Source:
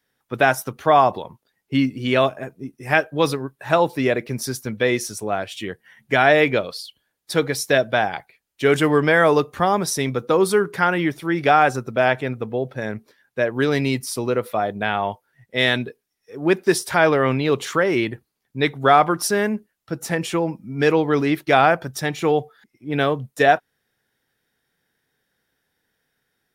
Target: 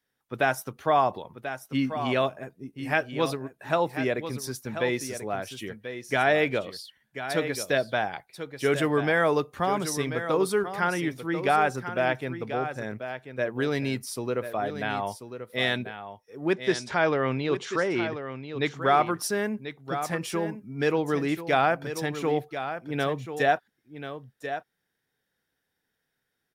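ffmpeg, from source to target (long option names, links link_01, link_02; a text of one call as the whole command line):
ffmpeg -i in.wav -filter_complex "[0:a]asettb=1/sr,asplit=3[link_01][link_02][link_03];[link_01]atrim=end=16.534[link_04];[link_02]atrim=start=16.53:end=18.67,asetpts=PTS-STARTPTS,afade=type=in:duration=0.004:curve=qsin,afade=type=out:start_time=2.136:duration=0.004:curve=qsin,lowpass=frequency=7100:width=0.5412,lowpass=frequency=7100:width=1.3066[link_05];[link_03]atrim=start=18.666[link_06];[link_04][link_05]acrossfade=duration=0.004:curve1=hsin:curve2=qsin[link_07];[link_07][link_06]acrossfade=duration=0.004:curve1=qsin:curve2=hsin,aecho=1:1:1038:0.316,volume=-7.5dB" out.wav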